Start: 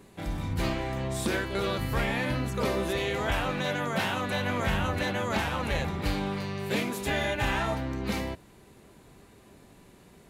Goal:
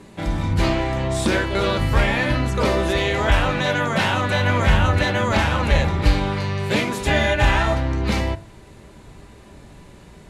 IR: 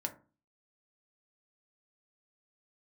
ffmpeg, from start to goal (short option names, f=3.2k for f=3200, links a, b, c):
-filter_complex "[0:a]lowpass=8.6k,asplit=2[a][b];[b]asubboost=boost=4.5:cutoff=110[c];[1:a]atrim=start_sample=2205[d];[c][d]afir=irnorm=-1:irlink=0,volume=-0.5dB[e];[a][e]amix=inputs=2:normalize=0,volume=3.5dB"